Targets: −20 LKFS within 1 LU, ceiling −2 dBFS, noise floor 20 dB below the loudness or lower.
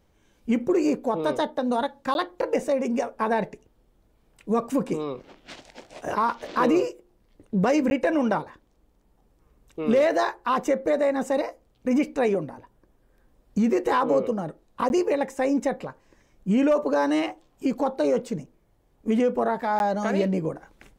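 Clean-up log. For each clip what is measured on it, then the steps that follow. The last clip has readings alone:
number of dropouts 4; longest dropout 11 ms; integrated loudness −25.0 LKFS; sample peak −11.0 dBFS; target loudness −20.0 LKFS
→ repair the gap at 0:02.14/0:07.90/0:14.89/0:19.79, 11 ms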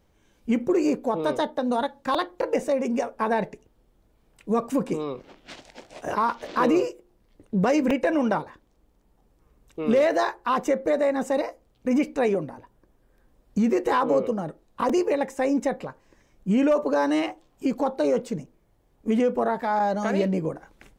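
number of dropouts 0; integrated loudness −25.0 LKFS; sample peak −11.0 dBFS; target loudness −20.0 LKFS
→ level +5 dB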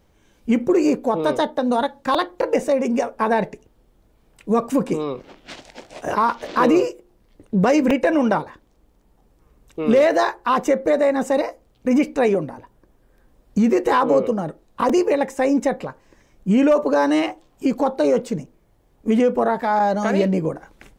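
integrated loudness −20.0 LKFS; sample peak −6.0 dBFS; background noise floor −59 dBFS

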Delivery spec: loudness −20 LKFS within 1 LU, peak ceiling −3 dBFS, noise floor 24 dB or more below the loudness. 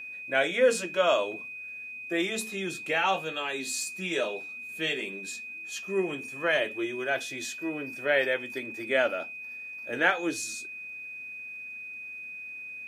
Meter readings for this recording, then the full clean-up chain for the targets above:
crackle rate 19 per second; interfering tone 2,500 Hz; level of the tone −38 dBFS; integrated loudness −30.0 LKFS; sample peak −9.5 dBFS; target loudness −20.0 LKFS
→ click removal
notch filter 2,500 Hz, Q 30
level +10 dB
brickwall limiter −3 dBFS

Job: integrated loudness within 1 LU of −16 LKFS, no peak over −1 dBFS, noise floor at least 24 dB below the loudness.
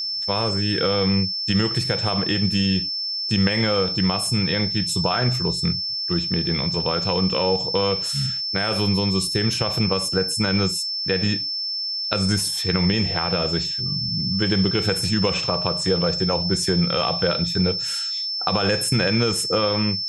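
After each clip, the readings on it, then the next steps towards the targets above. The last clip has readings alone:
interfering tone 5,300 Hz; level of the tone −24 dBFS; integrated loudness −21.0 LKFS; sample peak −3.5 dBFS; target loudness −16.0 LKFS
→ notch filter 5,300 Hz, Q 30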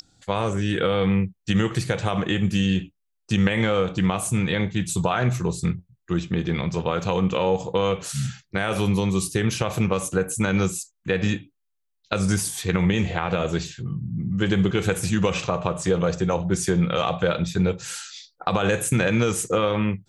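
interfering tone none found; integrated loudness −24.0 LKFS; sample peak −4.5 dBFS; target loudness −16.0 LKFS
→ level +8 dB
brickwall limiter −1 dBFS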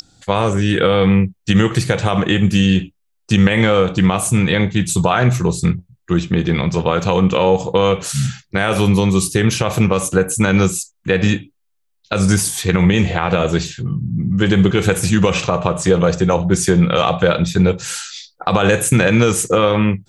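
integrated loudness −16.0 LKFS; sample peak −1.0 dBFS; background noise floor −67 dBFS

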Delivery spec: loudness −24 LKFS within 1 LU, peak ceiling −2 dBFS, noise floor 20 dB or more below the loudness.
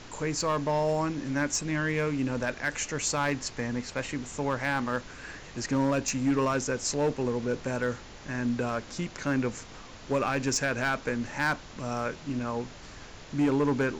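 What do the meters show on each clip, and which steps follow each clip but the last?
share of clipped samples 1.0%; peaks flattened at −20.0 dBFS; background noise floor −47 dBFS; target noise floor −50 dBFS; integrated loudness −29.5 LKFS; sample peak −20.0 dBFS; target loudness −24.0 LKFS
→ clipped peaks rebuilt −20 dBFS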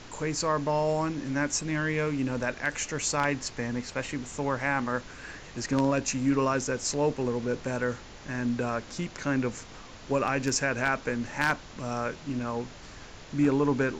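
share of clipped samples 0.0%; background noise floor −47 dBFS; target noise floor −49 dBFS
→ noise reduction from a noise print 6 dB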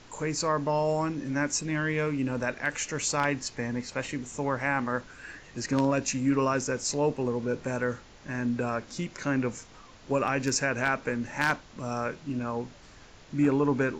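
background noise floor −52 dBFS; integrated loudness −29.5 LKFS; sample peak −11.0 dBFS; target loudness −24.0 LKFS
→ level +5.5 dB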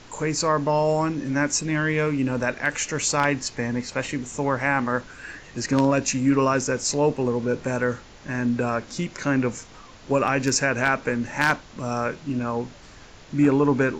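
integrated loudness −24.0 LKFS; sample peak −5.5 dBFS; background noise floor −46 dBFS

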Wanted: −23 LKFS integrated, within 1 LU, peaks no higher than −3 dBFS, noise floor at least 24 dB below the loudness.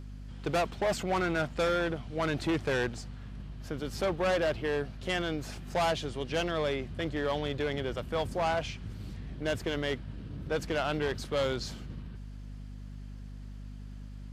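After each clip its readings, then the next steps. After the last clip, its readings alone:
mains hum 50 Hz; hum harmonics up to 250 Hz; level of the hum −41 dBFS; integrated loudness −32.0 LKFS; sample peak −19.0 dBFS; target loudness −23.0 LKFS
→ hum removal 50 Hz, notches 5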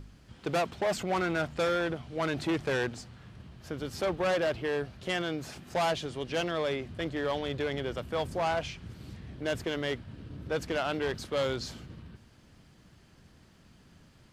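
mains hum none found; integrated loudness −32.0 LKFS; sample peak −20.0 dBFS; target loudness −23.0 LKFS
→ level +9 dB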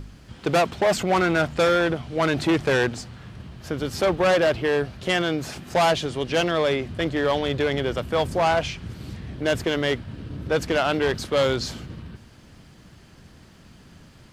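integrated loudness −23.0 LKFS; sample peak −11.0 dBFS; background noise floor −50 dBFS

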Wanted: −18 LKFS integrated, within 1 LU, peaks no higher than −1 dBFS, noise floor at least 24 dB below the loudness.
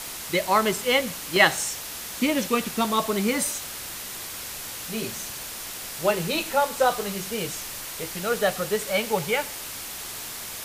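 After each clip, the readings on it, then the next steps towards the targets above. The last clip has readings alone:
number of dropouts 3; longest dropout 1.9 ms; background noise floor −36 dBFS; target noise floor −50 dBFS; integrated loudness −25.5 LKFS; sample peak −2.5 dBFS; target loudness −18.0 LKFS
→ repair the gap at 0:00.47/0:01.36/0:02.65, 1.9 ms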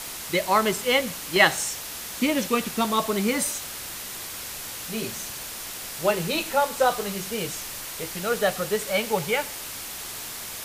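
number of dropouts 0; background noise floor −36 dBFS; target noise floor −50 dBFS
→ noise reduction from a noise print 14 dB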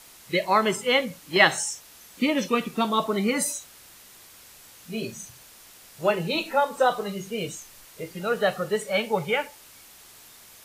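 background noise floor −50 dBFS; integrated loudness −25.0 LKFS; sample peak −3.0 dBFS; target loudness −18.0 LKFS
→ level +7 dB
brickwall limiter −1 dBFS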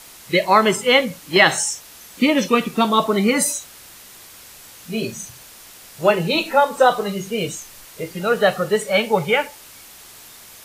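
integrated loudness −18.5 LKFS; sample peak −1.0 dBFS; background noise floor −43 dBFS

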